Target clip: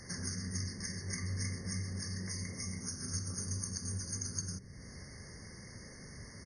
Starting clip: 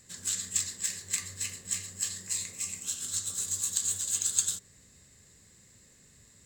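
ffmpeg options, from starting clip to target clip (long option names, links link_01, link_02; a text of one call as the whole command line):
ffmpeg -i in.wav -filter_complex "[0:a]aresample=22050,aresample=44100,acrossover=split=330[link_01][link_02];[link_02]acompressor=threshold=-49dB:ratio=3[link_03];[link_01][link_03]amix=inputs=2:normalize=0,afftfilt=real='re*eq(mod(floor(b*sr/1024/2200),2),0)':imag='im*eq(mod(floor(b*sr/1024/2200),2),0)':win_size=1024:overlap=0.75,volume=12.5dB" out.wav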